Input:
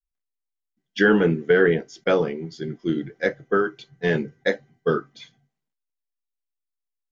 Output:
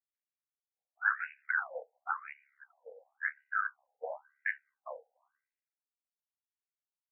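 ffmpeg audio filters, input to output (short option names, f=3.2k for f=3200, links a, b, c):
-af "aeval=exprs='val(0)*sin(2*PI*35*n/s)':c=same,afftfilt=real='re*between(b*sr/1024,640*pow(2100/640,0.5+0.5*sin(2*PI*0.94*pts/sr))/1.41,640*pow(2100/640,0.5+0.5*sin(2*PI*0.94*pts/sr))*1.41)':imag='im*between(b*sr/1024,640*pow(2100/640,0.5+0.5*sin(2*PI*0.94*pts/sr))/1.41,640*pow(2100/640,0.5+0.5*sin(2*PI*0.94*pts/sr))*1.41)':win_size=1024:overlap=0.75,volume=-2dB"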